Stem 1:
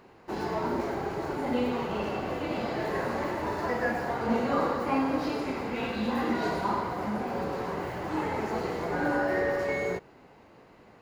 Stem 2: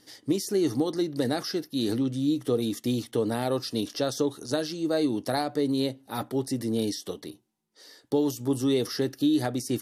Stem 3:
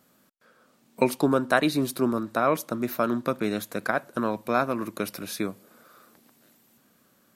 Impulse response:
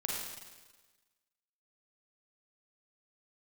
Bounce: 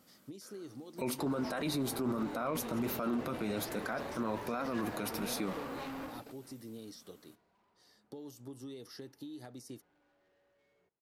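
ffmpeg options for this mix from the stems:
-filter_complex "[0:a]asoftclip=type=hard:threshold=0.0251,adelay=900,volume=0.398[s0];[1:a]alimiter=limit=0.141:level=0:latency=1:release=256,acompressor=threshold=0.0447:ratio=6,volume=0.158[s1];[2:a]equalizer=f=64:t=o:w=2.2:g=2.5,flanger=delay=3.7:depth=4.7:regen=-51:speed=1.3:shape=sinusoidal,bandreject=f=1700:w=12,volume=1.19,asplit=2[s2][s3];[s3]apad=whole_len=525254[s4];[s0][s4]sidechaingate=range=0.0251:threshold=0.00126:ratio=16:detection=peak[s5];[s5][s1][s2]amix=inputs=3:normalize=0,alimiter=level_in=1.33:limit=0.0631:level=0:latency=1:release=21,volume=0.75"

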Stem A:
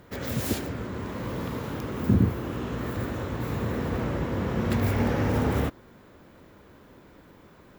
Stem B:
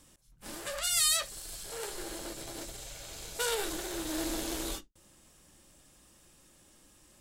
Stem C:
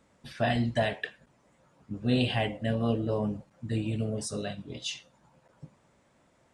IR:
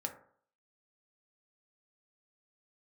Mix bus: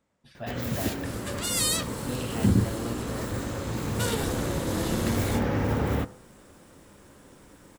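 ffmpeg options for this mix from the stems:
-filter_complex "[0:a]adelay=350,volume=0.596,asplit=2[s0][s1];[s1]volume=0.562[s2];[1:a]adelay=600,volume=1.06[s3];[2:a]volume=0.316[s4];[3:a]atrim=start_sample=2205[s5];[s2][s5]afir=irnorm=-1:irlink=0[s6];[s0][s3][s4][s6]amix=inputs=4:normalize=0"

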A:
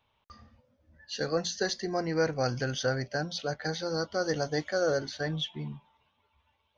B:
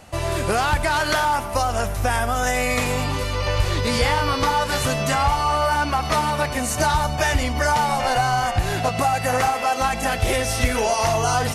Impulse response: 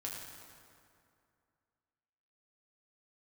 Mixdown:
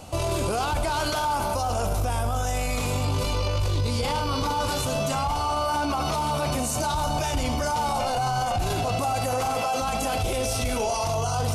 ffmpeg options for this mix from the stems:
-filter_complex "[0:a]highshelf=f=5300:g=-9.5,asoftclip=type=hard:threshold=0.0282,volume=0.335[s0];[1:a]equalizer=f=1800:t=o:w=0.5:g=-14.5,volume=1.19,asplit=2[s1][s2];[s2]volume=0.562[s3];[2:a]atrim=start_sample=2205[s4];[s3][s4]afir=irnorm=-1:irlink=0[s5];[s0][s1][s5]amix=inputs=3:normalize=0,alimiter=limit=0.126:level=0:latency=1:release=11"

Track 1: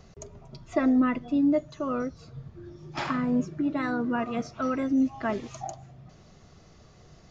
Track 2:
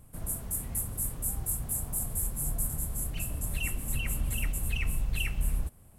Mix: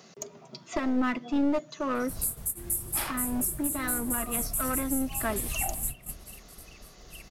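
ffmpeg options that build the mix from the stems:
-filter_complex "[0:a]highpass=f=180:w=0.5412,highpass=f=180:w=1.3066,highshelf=f=2100:g=7.5,aeval=exprs='clip(val(0),-1,0.0398)':c=same,volume=1.19,asplit=2[s0][s1];[1:a]highshelf=f=4200:g=10.5,adelay=1950,volume=0.841[s2];[s1]apad=whole_len=349768[s3];[s2][s3]sidechaingate=range=0.0224:threshold=0.00316:ratio=16:detection=peak[s4];[s0][s4]amix=inputs=2:normalize=0,alimiter=limit=0.133:level=0:latency=1:release=483"

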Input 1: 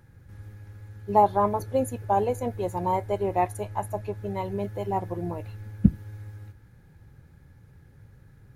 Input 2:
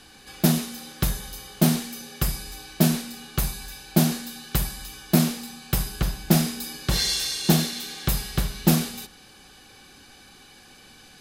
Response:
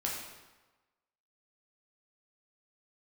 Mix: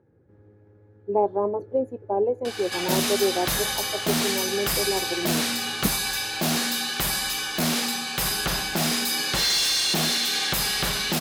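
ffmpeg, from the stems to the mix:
-filter_complex "[0:a]acontrast=45,bandpass=f=400:t=q:w=2.3:csg=0,volume=1[s0];[1:a]asplit=2[s1][s2];[s2]highpass=f=720:p=1,volume=20,asoftclip=type=tanh:threshold=0.668[s3];[s1][s3]amix=inputs=2:normalize=0,lowpass=f=5800:p=1,volume=0.501,alimiter=limit=0.211:level=0:latency=1:release=23,adelay=2450,volume=0.631[s4];[s0][s4]amix=inputs=2:normalize=0"

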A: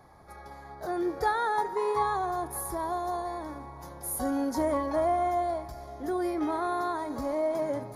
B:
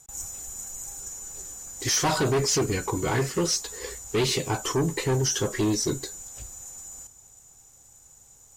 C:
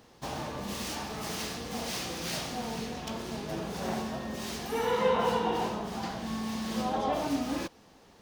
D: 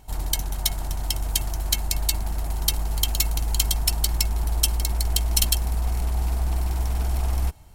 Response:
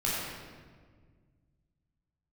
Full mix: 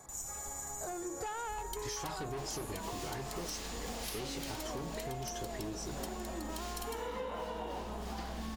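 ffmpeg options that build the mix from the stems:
-filter_complex "[0:a]bandreject=f=50:t=h:w=6,bandreject=f=100:t=h:w=6,bandreject=f=150:t=h:w=6,bandreject=f=200:t=h:w=6,bandreject=f=250:t=h:w=6,bandreject=f=300:t=h:w=6,bandreject=f=350:t=h:w=6,asoftclip=type=tanh:threshold=0.0447,volume=0.841[s0];[1:a]volume=0.562[s1];[2:a]highpass=190,adelay=2150,volume=1.33[s2];[3:a]adelay=1400,volume=0.224[s3];[s0][s1][s2][s3]amix=inputs=4:normalize=0,acompressor=threshold=0.0141:ratio=10"

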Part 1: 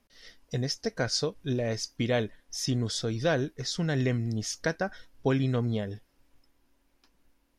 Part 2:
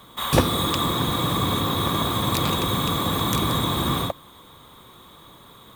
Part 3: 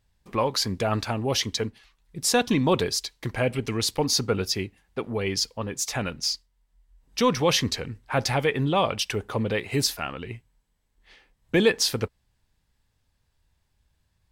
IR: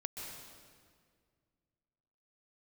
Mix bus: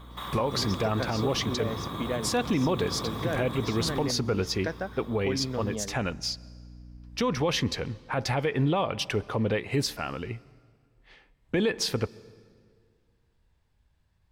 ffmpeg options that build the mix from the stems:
-filter_complex "[0:a]highpass=160,aeval=exprs='val(0)+0.00794*(sin(2*PI*60*n/s)+sin(2*PI*2*60*n/s)/2+sin(2*PI*3*60*n/s)/3+sin(2*PI*4*60*n/s)/4+sin(2*PI*5*60*n/s)/5)':c=same,volume=0.708[s0];[1:a]acompressor=threshold=0.0224:ratio=2.5,volume=0.75[s1];[2:a]volume=1.06,asplit=2[s2][s3];[s3]volume=0.0944[s4];[3:a]atrim=start_sample=2205[s5];[s4][s5]afir=irnorm=-1:irlink=0[s6];[s0][s1][s2][s6]amix=inputs=4:normalize=0,highshelf=f=4200:g=-10.5,alimiter=limit=0.133:level=0:latency=1:release=100"

